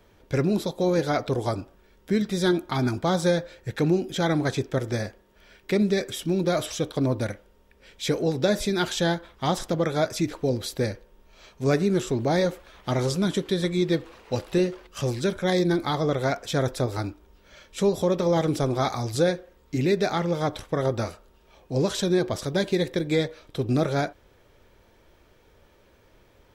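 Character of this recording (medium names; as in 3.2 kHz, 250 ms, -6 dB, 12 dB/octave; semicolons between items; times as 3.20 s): noise floor -59 dBFS; spectral tilt -5.5 dB/octave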